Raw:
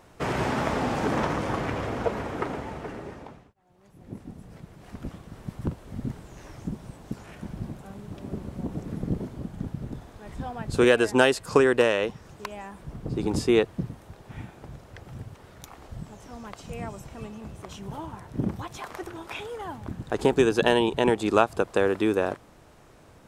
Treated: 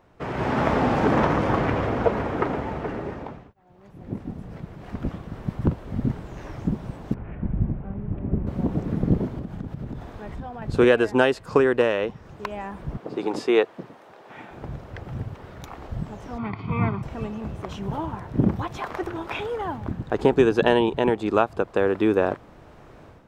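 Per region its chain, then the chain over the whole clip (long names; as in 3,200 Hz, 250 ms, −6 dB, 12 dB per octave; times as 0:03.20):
0:07.14–0:08.47: transistor ladder low-pass 3,000 Hz, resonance 35% + spectral tilt −3.5 dB per octave
0:09.38–0:10.62: downward compressor 3 to 1, threshold −38 dBFS + one half of a high-frequency compander encoder only
0:12.97–0:14.51: high-pass filter 440 Hz + high-shelf EQ 10,000 Hz −4 dB
0:16.38–0:17.03: lower of the sound and its delayed copy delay 0.43 ms + loudspeaker in its box 110–3,400 Hz, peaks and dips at 110 Hz +9 dB, 430 Hz +3 dB, 630 Hz +6 dB, 1,100 Hz +9 dB + comb filter 0.9 ms, depth 86%
whole clip: parametric band 10,000 Hz −15 dB 1.9 octaves; automatic gain control gain up to 11.5 dB; level −3.5 dB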